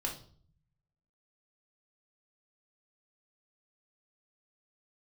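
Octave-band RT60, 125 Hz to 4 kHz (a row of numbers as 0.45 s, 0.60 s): 1.3 s, 0.85 s, 0.55 s, 0.45 s, 0.35 s, 0.45 s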